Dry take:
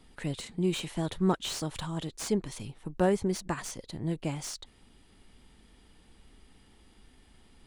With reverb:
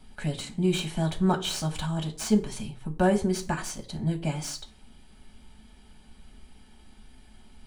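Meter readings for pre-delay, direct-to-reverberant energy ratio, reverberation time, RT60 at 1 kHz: 5 ms, 2.5 dB, 0.45 s, 0.45 s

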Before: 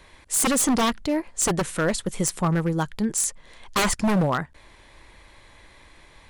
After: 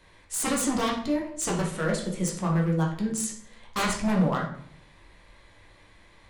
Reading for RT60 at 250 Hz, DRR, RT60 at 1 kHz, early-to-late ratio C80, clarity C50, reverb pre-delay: 0.80 s, -2.0 dB, 0.55 s, 10.0 dB, 5.5 dB, 8 ms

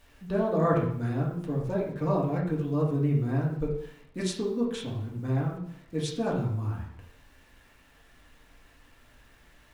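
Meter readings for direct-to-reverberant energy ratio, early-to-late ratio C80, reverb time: -5.0 dB, 8.5 dB, 0.70 s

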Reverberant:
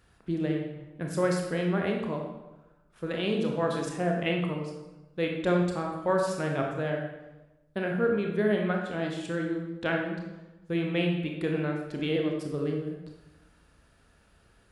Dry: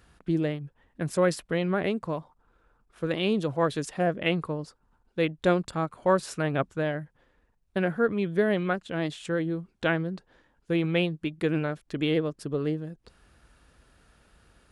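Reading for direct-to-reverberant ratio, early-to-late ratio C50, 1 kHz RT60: 0.5 dB, 3.5 dB, 1.0 s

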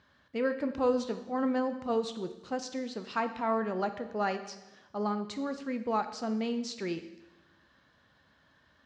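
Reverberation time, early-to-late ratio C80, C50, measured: 1.1 s, 13.5 dB, 11.0 dB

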